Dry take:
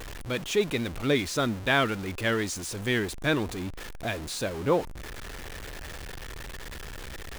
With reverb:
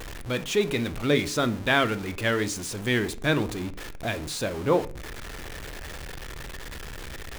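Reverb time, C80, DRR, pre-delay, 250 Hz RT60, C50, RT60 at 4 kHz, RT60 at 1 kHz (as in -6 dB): 0.40 s, 24.0 dB, 12.0 dB, 20 ms, 0.55 s, 18.5 dB, 0.35 s, 0.35 s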